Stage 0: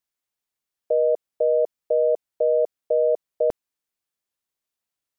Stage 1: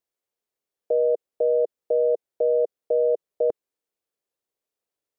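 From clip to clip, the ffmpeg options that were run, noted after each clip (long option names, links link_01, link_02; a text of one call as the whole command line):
ffmpeg -i in.wav -af "equalizer=frequency=460:width_type=o:width=1.2:gain=13,alimiter=limit=-10.5dB:level=0:latency=1:release=29,volume=-4dB" out.wav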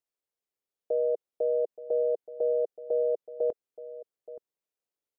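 ffmpeg -i in.wav -filter_complex "[0:a]asplit=2[link_01][link_02];[link_02]adelay=874.6,volume=-15dB,highshelf=frequency=4000:gain=-19.7[link_03];[link_01][link_03]amix=inputs=2:normalize=0,volume=-6dB" out.wav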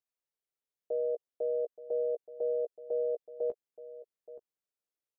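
ffmpeg -i in.wav -filter_complex "[0:a]asplit=2[link_01][link_02];[link_02]adelay=15,volume=-8dB[link_03];[link_01][link_03]amix=inputs=2:normalize=0,volume=-6dB" out.wav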